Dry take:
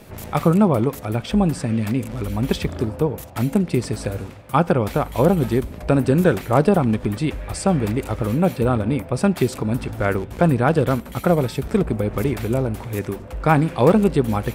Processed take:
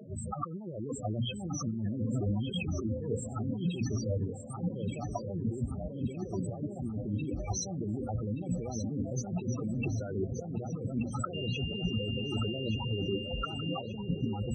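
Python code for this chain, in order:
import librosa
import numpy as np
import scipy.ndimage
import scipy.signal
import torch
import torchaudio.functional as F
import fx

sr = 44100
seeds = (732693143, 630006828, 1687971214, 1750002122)

y = fx.freq_compress(x, sr, knee_hz=3000.0, ratio=1.5)
y = scipy.signal.sosfilt(scipy.signal.butter(2, 82.0, 'highpass', fs=sr, output='sos'), y)
y = fx.high_shelf(y, sr, hz=6600.0, db=11.5)
y = fx.hum_notches(y, sr, base_hz=60, count=5)
y = fx.over_compress(y, sr, threshold_db=-28.0, ratio=-1.0)
y = fx.comb_fb(y, sr, f0_hz=770.0, decay_s=0.27, harmonics='all', damping=0.0, mix_pct=50)
y = fx.spec_topn(y, sr, count=8)
y = fx.dmg_tone(y, sr, hz=2800.0, level_db=-39.0, at=(11.33, 13.8), fade=0.02)
y = fx.echo_feedback(y, sr, ms=1178, feedback_pct=47, wet_db=-9.5)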